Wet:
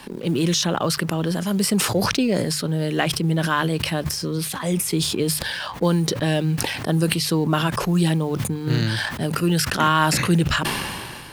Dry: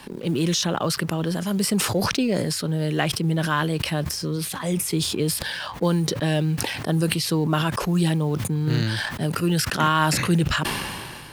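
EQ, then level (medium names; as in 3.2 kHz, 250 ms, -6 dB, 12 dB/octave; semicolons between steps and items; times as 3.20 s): hum notches 50/100/150 Hz; +2.0 dB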